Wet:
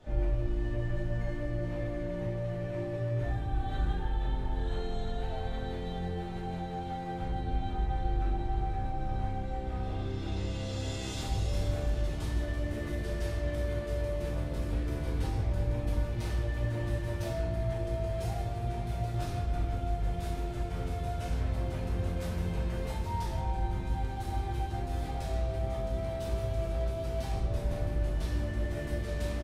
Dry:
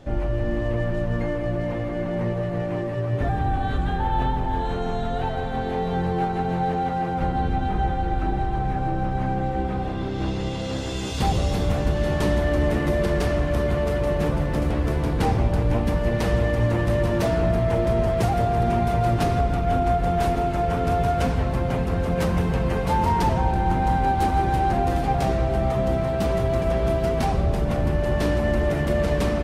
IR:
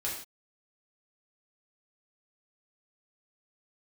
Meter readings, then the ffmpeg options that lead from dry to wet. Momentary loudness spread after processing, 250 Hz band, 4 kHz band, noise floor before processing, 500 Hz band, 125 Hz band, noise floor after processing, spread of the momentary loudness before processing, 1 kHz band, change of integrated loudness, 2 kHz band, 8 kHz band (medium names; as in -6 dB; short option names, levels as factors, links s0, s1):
3 LU, -13.5 dB, -9.5 dB, -27 dBFS, -13.5 dB, -9.0 dB, -37 dBFS, 5 LU, -15.5 dB, -11.0 dB, -12.5 dB, -8.5 dB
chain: -filter_complex "[0:a]alimiter=limit=0.133:level=0:latency=1,acrossover=split=140|3000[s0][s1][s2];[s1]acompressor=threshold=0.0224:ratio=4[s3];[s0][s3][s2]amix=inputs=3:normalize=0,asplit=2[s4][s5];[s5]adelay=21,volume=0.224[s6];[s4][s6]amix=inputs=2:normalize=0[s7];[1:a]atrim=start_sample=2205[s8];[s7][s8]afir=irnorm=-1:irlink=0,volume=0.355"